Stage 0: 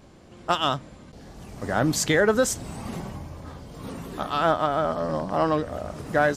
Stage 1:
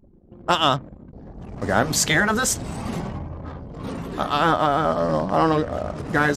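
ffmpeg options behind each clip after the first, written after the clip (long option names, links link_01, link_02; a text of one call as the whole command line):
ffmpeg -i in.wav -af "afftfilt=real='re*lt(hypot(re,im),0.562)':imag='im*lt(hypot(re,im),0.562)':win_size=1024:overlap=0.75,anlmdn=0.1,volume=5.5dB" out.wav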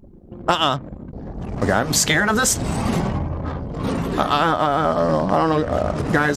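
ffmpeg -i in.wav -af "acompressor=threshold=-22dB:ratio=6,volume=8dB" out.wav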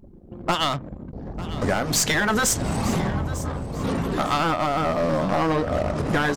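ffmpeg -i in.wav -af "aeval=exprs='clip(val(0),-1,0.141)':channel_layout=same,aecho=1:1:898|1796|2694:0.158|0.0475|0.0143,volume=-2dB" out.wav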